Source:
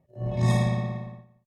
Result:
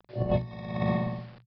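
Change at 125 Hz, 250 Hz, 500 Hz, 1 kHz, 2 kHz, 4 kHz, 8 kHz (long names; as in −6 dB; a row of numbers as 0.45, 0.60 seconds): −6.0 dB, −1.0 dB, +2.5 dB, −0.5 dB, −3.0 dB, −6.0 dB, below −30 dB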